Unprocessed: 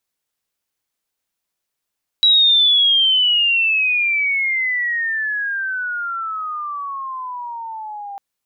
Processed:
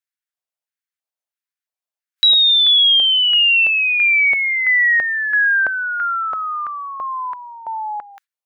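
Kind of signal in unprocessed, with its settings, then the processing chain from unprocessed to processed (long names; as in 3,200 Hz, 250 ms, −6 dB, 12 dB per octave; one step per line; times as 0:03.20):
glide logarithmic 3,900 Hz → 790 Hz −9 dBFS → −28 dBFS 5.95 s
noise reduction from a noise print of the clip's start 14 dB
auto-filter high-pass square 1.5 Hz 640–1,600 Hz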